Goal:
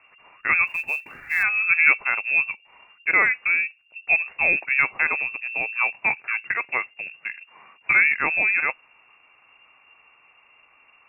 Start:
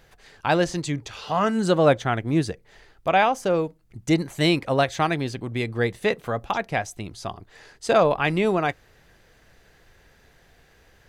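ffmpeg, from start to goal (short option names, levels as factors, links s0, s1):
-filter_complex "[0:a]lowpass=f=2400:t=q:w=0.5098,lowpass=f=2400:t=q:w=0.6013,lowpass=f=2400:t=q:w=0.9,lowpass=f=2400:t=q:w=2.563,afreqshift=-2800,asettb=1/sr,asplit=3[s0][s1][s2];[s0]atrim=end=0.674[s3];[s1]atrim=start=0.67:end=1.43,asetpts=PTS-STARTPTS,afade=t=in:d=0.004:c=qsin,afade=t=out:st=0.756:d=0.004:c=qsin,acrusher=bits=6:mode=log:mix=0:aa=0.000001[s4];[s2]atrim=start=1.426[s5];[s3][s4]acrossfade=d=0.004:c1=hsin:c2=qsin[s6];[s6][s5]acrossfade=d=0.004:c1=qsin:c2=hsin,asettb=1/sr,asplit=3[s7][s8][s9];[s7]atrim=end=5.974[s10];[s8]atrim=start=5.97:end=7.89,asetpts=PTS-STARTPTS,afade=t=in:d=0.004:c=qsin,afade=t=out:st=1.916:d=0.004:c=qsin,highpass=f=100:w=0.5412,highpass=f=100:w=1.3066[s11];[s9]atrim=start=7.886[s12];[s10][s11]acrossfade=d=0.004:c1=hsin:c2=qsin[s13];[s13][s12]acrossfade=d=0.004:c1=qsin:c2=hsin"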